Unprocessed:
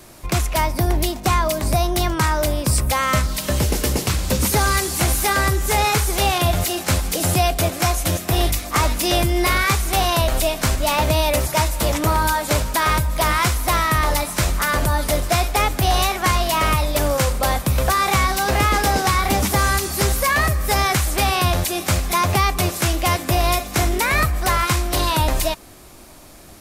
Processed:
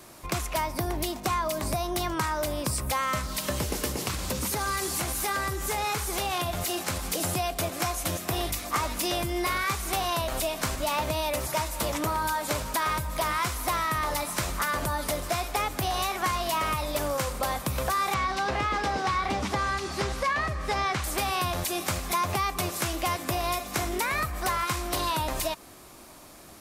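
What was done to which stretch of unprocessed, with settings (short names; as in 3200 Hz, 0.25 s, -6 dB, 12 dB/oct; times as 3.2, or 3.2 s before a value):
3.91–7.03 compressor, threshold -18 dBFS
18.14–21.04 LPF 4800 Hz
whole clip: low shelf 76 Hz -10.5 dB; compressor, threshold -21 dBFS; bell 1100 Hz +3.5 dB 0.52 oct; gain -4.5 dB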